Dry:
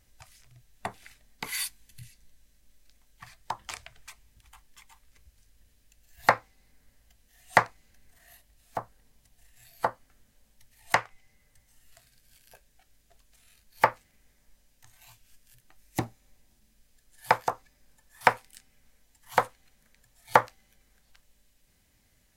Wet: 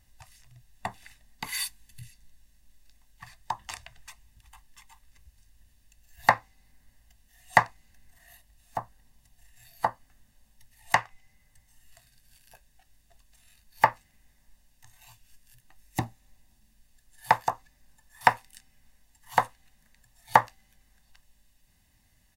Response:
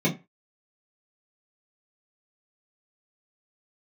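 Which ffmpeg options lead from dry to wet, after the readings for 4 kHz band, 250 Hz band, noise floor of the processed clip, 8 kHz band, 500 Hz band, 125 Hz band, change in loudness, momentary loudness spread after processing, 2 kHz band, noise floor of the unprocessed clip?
+0.5 dB, −1.0 dB, −65 dBFS, 0.0 dB, −3.0 dB, +2.0 dB, +1.0 dB, 16 LU, +0.5 dB, −67 dBFS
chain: -af "aecho=1:1:1.1:0.51,volume=-1dB"

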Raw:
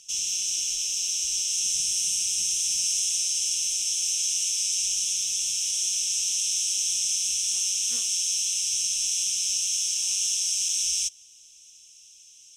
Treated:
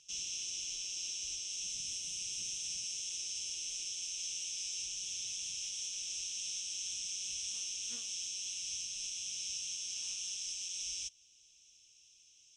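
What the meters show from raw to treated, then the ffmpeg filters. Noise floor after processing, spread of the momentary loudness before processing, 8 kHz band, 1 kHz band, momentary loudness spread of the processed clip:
−64 dBFS, 2 LU, −15.0 dB, can't be measured, 1 LU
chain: -af "lowpass=5200,equalizer=frequency=110:width_type=o:width=2.7:gain=3.5,alimiter=limit=-22.5dB:level=0:latency=1:release=476,volume=-7.5dB"

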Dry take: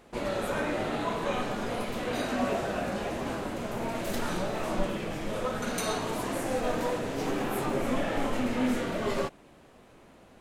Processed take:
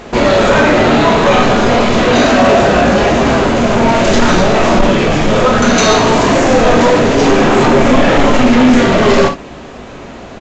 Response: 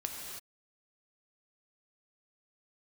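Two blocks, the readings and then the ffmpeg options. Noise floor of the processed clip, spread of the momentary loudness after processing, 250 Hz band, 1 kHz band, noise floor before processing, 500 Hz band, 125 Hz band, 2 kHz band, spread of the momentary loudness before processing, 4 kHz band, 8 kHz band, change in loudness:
−30 dBFS, 3 LU, +21.5 dB, +21.5 dB, −56 dBFS, +21.5 dB, +22.0 dB, +22.0 dB, 4 LU, +22.0 dB, +19.5 dB, +21.5 dB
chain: -filter_complex "[1:a]atrim=start_sample=2205,atrim=end_sample=3087[link_01];[0:a][link_01]afir=irnorm=-1:irlink=0,apsyclip=22.5dB,acontrast=60,aresample=16000,aresample=44100,volume=-3dB"

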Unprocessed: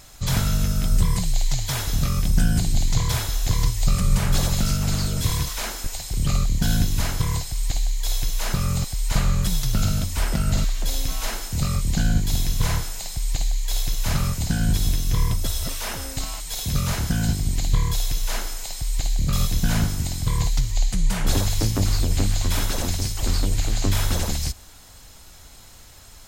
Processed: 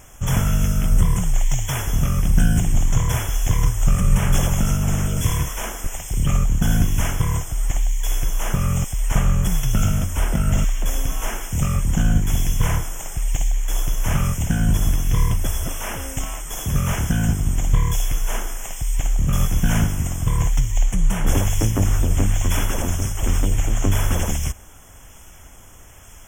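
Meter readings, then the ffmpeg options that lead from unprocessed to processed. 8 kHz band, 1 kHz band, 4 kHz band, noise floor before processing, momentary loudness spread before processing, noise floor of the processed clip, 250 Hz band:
+0.5 dB, +3.0 dB, −4.5 dB, −45 dBFS, 6 LU, −43 dBFS, +3.0 dB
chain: -filter_complex "[0:a]asplit=2[link_01][link_02];[link_02]acrusher=samples=9:mix=1:aa=0.000001:lfo=1:lforange=14.4:lforate=1.1,volume=-8dB[link_03];[link_01][link_03]amix=inputs=2:normalize=0,asuperstop=centerf=4300:order=12:qfactor=2.2"

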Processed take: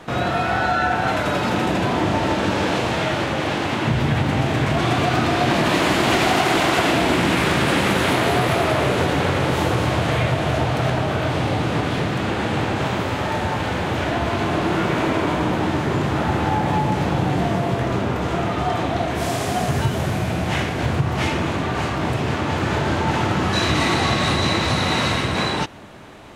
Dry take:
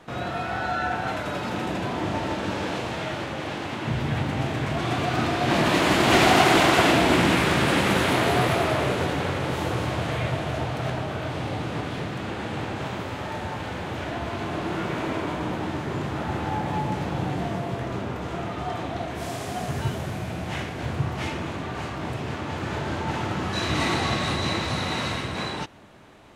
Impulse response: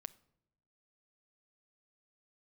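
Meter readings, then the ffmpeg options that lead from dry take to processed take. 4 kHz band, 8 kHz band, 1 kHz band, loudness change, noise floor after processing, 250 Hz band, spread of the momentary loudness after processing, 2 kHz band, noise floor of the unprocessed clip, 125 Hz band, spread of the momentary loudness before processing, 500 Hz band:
+4.5 dB, +4.0 dB, +5.0 dB, +5.0 dB, −24 dBFS, +5.5 dB, 5 LU, +4.5 dB, −33 dBFS, +6.5 dB, 12 LU, +5.0 dB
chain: -af "acompressor=threshold=-24dB:ratio=6,volume=9dB"

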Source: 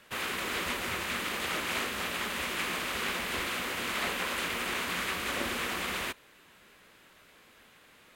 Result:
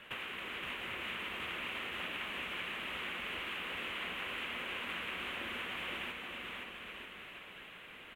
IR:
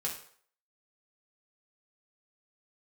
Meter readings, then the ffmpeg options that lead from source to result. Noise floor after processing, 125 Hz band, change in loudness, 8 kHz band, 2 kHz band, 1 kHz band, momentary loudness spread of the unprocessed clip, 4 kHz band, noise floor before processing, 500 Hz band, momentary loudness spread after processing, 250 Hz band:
−52 dBFS, −9.5 dB, −8.0 dB, −21.0 dB, −6.0 dB, −9.0 dB, 2 LU, −6.0 dB, −59 dBFS, −9.5 dB, 9 LU, −9.5 dB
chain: -filter_complex "[0:a]highshelf=frequency=3800:width_type=q:width=3:gain=-9,acompressor=threshold=-44dB:ratio=5,asplit=2[link_01][link_02];[link_02]aecho=0:1:520|936|1269|1535|1748:0.631|0.398|0.251|0.158|0.1[link_03];[link_01][link_03]amix=inputs=2:normalize=0,volume=2dB"

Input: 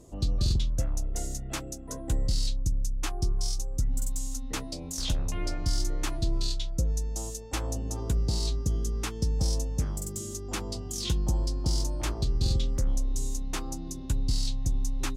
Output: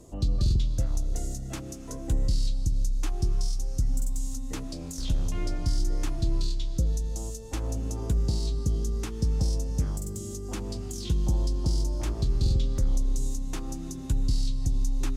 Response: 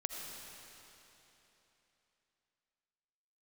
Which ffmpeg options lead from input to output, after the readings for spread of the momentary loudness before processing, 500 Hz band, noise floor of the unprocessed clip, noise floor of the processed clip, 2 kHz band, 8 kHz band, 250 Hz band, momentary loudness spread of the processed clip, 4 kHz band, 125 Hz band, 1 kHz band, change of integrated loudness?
7 LU, +0.5 dB, −38 dBFS, −37 dBFS, −5.0 dB, −4.0 dB, +1.5 dB, 8 LU, −5.0 dB, +2.0 dB, −3.5 dB, +1.0 dB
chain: -filter_complex "[0:a]asplit=2[link_01][link_02];[1:a]atrim=start_sample=2205[link_03];[link_02][link_03]afir=irnorm=-1:irlink=0,volume=-10.5dB[link_04];[link_01][link_04]amix=inputs=2:normalize=0,acrossover=split=430[link_05][link_06];[link_06]acompressor=threshold=-41dB:ratio=3[link_07];[link_05][link_07]amix=inputs=2:normalize=0"

